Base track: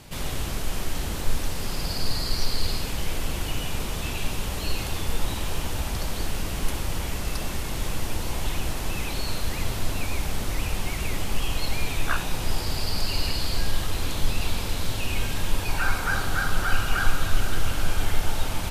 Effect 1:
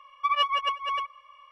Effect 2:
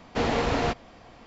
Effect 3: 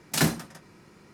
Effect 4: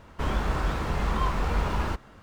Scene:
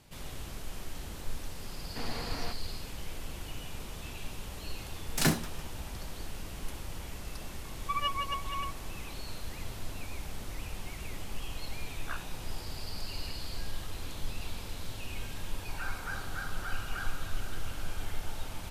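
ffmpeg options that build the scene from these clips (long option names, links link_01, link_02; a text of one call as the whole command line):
ffmpeg -i bed.wav -i cue0.wav -i cue1.wav -i cue2.wav -filter_complex "[0:a]volume=-12.5dB[link_01];[2:a]equalizer=frequency=470:width=0.82:gain=-6,atrim=end=1.26,asetpts=PTS-STARTPTS,volume=-12dB,afade=type=in:duration=0.004:curve=hsin,afade=type=out:start_time=1.256:duration=0.004:curve=hsin,adelay=1800[link_02];[3:a]atrim=end=1.13,asetpts=PTS-STARTPTS,volume=-3.5dB,afade=type=in:duration=0.004:curve=hsin,afade=type=out:start_time=1.126:duration=0.004:curve=hsin,adelay=5040[link_03];[1:a]atrim=end=1.51,asetpts=PTS-STARTPTS,volume=-8dB,afade=type=in:duration=0.004:curve=hsin,afade=type=out:start_time=1.506:duration=0.004:curve=hsin,adelay=7650[link_04];[link_01][link_02][link_03][link_04]amix=inputs=4:normalize=0" out.wav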